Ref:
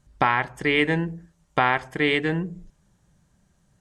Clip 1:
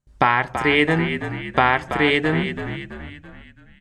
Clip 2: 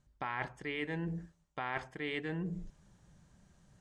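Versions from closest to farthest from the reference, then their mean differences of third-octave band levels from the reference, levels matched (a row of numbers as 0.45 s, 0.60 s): 2, 1; 4.0 dB, 5.5 dB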